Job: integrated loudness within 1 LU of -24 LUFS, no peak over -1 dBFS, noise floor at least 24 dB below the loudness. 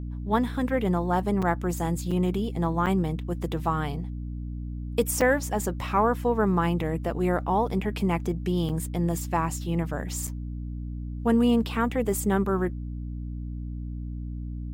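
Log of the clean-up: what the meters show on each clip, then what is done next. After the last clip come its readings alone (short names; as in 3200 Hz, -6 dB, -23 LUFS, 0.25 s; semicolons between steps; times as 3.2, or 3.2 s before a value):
dropouts 6; longest dropout 5.3 ms; hum 60 Hz; harmonics up to 300 Hz; hum level -31 dBFS; loudness -27.5 LUFS; peak -11.0 dBFS; loudness target -24.0 LUFS
-> interpolate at 1.42/2.11/2.86/5.21/8.69/10.27, 5.3 ms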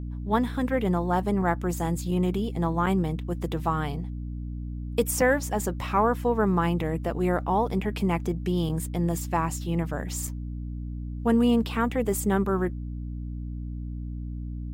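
dropouts 0; hum 60 Hz; harmonics up to 300 Hz; hum level -31 dBFS
-> notches 60/120/180/240/300 Hz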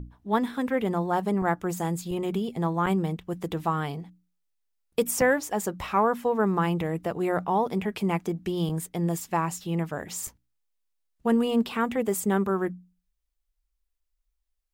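hum none; loudness -27.5 LUFS; peak -11.0 dBFS; loudness target -24.0 LUFS
-> gain +3.5 dB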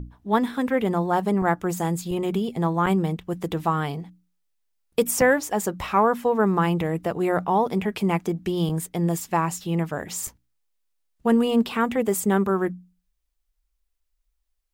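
loudness -24.0 LUFS; peak -7.5 dBFS; noise floor -75 dBFS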